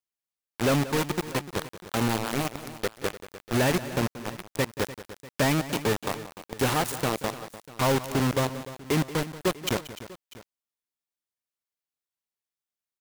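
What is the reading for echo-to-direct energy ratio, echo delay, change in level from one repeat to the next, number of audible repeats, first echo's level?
-11.5 dB, 0.181 s, no steady repeat, 3, -15.0 dB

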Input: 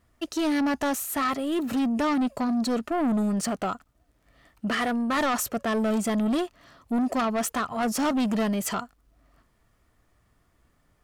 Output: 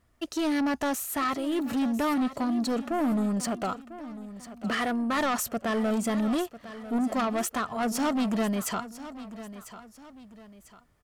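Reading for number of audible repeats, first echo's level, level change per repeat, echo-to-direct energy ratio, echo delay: 2, -14.5 dB, -8.0 dB, -14.0 dB, 0.997 s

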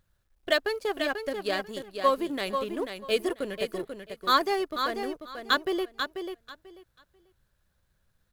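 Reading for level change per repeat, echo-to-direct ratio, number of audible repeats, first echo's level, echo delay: -14.5 dB, -7.0 dB, 2, -7.0 dB, 0.49 s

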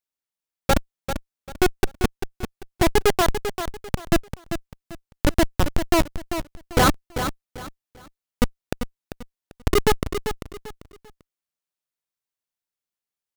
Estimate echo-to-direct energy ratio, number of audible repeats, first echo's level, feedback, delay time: -8.5 dB, 3, -9.0 dB, 28%, 0.393 s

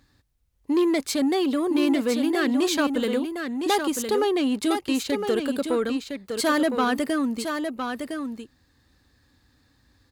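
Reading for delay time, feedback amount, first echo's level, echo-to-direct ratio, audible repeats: 1.01 s, no steady repeat, -6.5 dB, -6.5 dB, 1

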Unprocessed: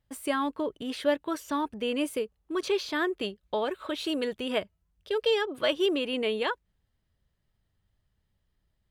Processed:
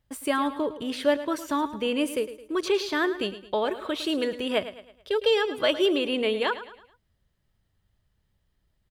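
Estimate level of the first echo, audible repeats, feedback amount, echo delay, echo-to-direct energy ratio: -13.5 dB, 3, 42%, 0.108 s, -12.5 dB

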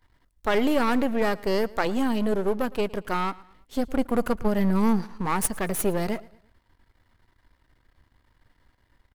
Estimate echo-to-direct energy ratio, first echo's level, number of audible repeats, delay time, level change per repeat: -21.0 dB, -22.0 dB, 2, 0.112 s, -7.5 dB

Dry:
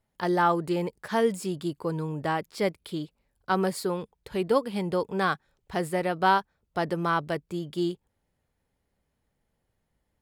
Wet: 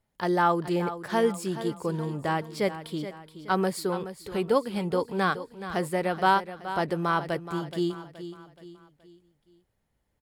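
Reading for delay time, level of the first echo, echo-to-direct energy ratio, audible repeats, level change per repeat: 0.424 s, -12.0 dB, -11.0 dB, 4, -7.5 dB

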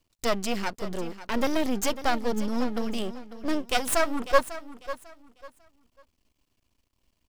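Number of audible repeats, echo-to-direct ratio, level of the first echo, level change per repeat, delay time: 2, -13.5 dB, -14.0 dB, -11.5 dB, 0.547 s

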